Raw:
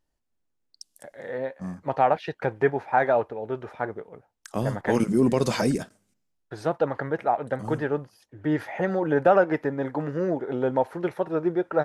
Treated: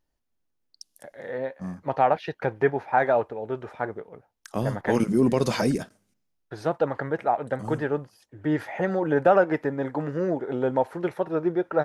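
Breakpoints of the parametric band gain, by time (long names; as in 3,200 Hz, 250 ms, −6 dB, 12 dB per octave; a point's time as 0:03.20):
parametric band 7,800 Hz 0.24 octaves
−6.5 dB
from 0:02.98 +2 dB
from 0:03.98 −6 dB
from 0:06.66 +2.5 dB
from 0:11.18 −4.5 dB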